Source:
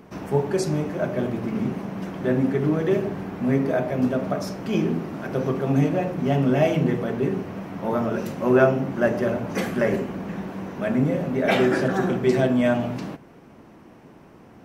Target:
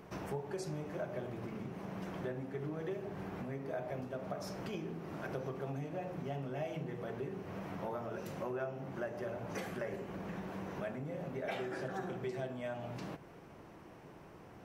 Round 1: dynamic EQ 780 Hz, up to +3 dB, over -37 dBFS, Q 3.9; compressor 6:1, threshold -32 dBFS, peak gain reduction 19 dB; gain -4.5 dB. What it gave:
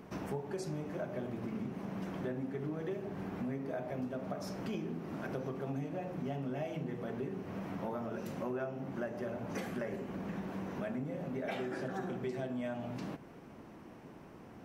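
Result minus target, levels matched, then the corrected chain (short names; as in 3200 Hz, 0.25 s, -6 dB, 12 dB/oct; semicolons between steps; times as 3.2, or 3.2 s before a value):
250 Hz band +2.5 dB
dynamic EQ 780 Hz, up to +3 dB, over -37 dBFS, Q 3.9; compressor 6:1, threshold -32 dBFS, peak gain reduction 19 dB; bell 240 Hz -8.5 dB 0.52 oct; gain -4.5 dB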